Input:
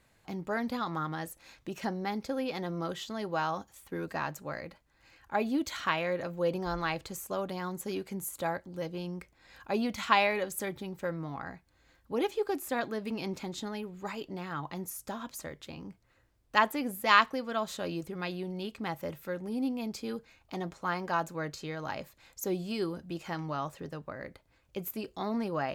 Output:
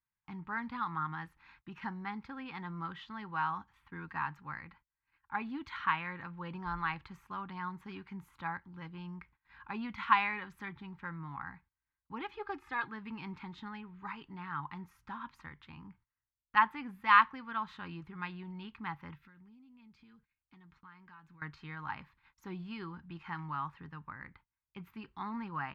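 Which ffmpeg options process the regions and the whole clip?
ffmpeg -i in.wav -filter_complex "[0:a]asettb=1/sr,asplit=3[link_01][link_02][link_03];[link_01]atrim=end=12.334[link_04];[link_02]atrim=start=12.33:end=12.87,asetpts=PTS-STARTPTS,afade=type=in:duration=0.004:curve=qsin,afade=type=out:start_time=0.536:duration=0.004:curve=qsin,lowpass=9100,aecho=1:1:2.4:0.83,atrim=end_sample=23814[link_05];[link_03]atrim=start=12.866[link_06];[link_04][link_05]acrossfade=duration=0.004:curve1=hsin:curve2=qsin[link_07];[link_07][link_06]acrossfade=duration=0.004:curve1=qsin:curve2=hsin,asettb=1/sr,asplit=3[link_08][link_09][link_10];[link_08]atrim=end=19.154[link_11];[link_09]atrim=start=19.15:end=21.42,asetpts=PTS-STARTPTS,afade=type=in:duration=0.004:curve=qsin,afade=type=out:start_time=2.266:duration=0.004:curve=qsin,equalizer=frequency=790:width=0.81:gain=-10.5,acompressor=threshold=-48dB:ratio=12:attack=3.2:release=140:knee=1:detection=peak[link_12];[link_10]atrim=start=21.416[link_13];[link_11][link_12]acrossfade=duration=0.004:curve1=hsin:curve2=qsin[link_14];[link_14][link_13]acrossfade=duration=0.004:curve1=qsin:curve2=hsin,agate=range=-25dB:threshold=-57dB:ratio=16:detection=peak,firequalizer=gain_entry='entry(160,0);entry(600,-24);entry(890,5);entry(2000,2);entry(7400,-29)':delay=0.05:min_phase=1,volume=-4dB" out.wav

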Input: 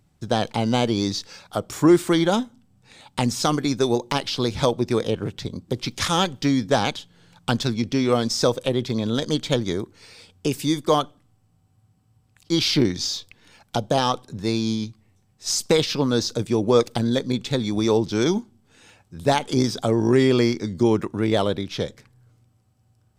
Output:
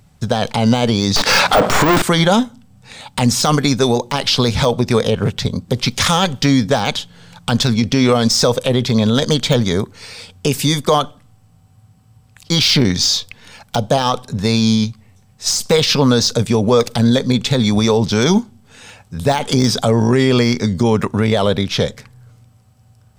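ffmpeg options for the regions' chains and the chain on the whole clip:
ffmpeg -i in.wav -filter_complex "[0:a]asettb=1/sr,asplit=3[link_01][link_02][link_03];[link_01]atrim=end=1.164[link_04];[link_02]atrim=start=1.16:end=2.02,asetpts=PTS-STARTPTS,afade=type=in:duration=0.004:curve=qsin,afade=type=out:start_time=0.856:duration=0.004:curve=qsin,aeval=exprs='if(lt(val(0),0),0.251*val(0),val(0))':channel_layout=same,equalizer=frequency=290:width=6.2:gain=4.5,asplit=2[link_05][link_06];[link_06]highpass=frequency=720:poles=1,volume=40dB,asoftclip=type=tanh:threshold=-4.5dB[link_07];[link_05][link_07]amix=inputs=2:normalize=0,lowpass=frequency=2500:poles=1,volume=-6dB[link_08];[link_03]atrim=start=2.016[link_09];[link_04][link_08]acrossfade=duration=0.004:curve1=hsin:curve2=qsin[link_10];[link_10][link_09]acrossfade=duration=0.004:curve1=qsin:curve2=hsin,deesser=0.5,equalizer=frequency=330:width=5.4:gain=-15,alimiter=level_in=15.5dB:limit=-1dB:release=50:level=0:latency=1,volume=-3dB" out.wav

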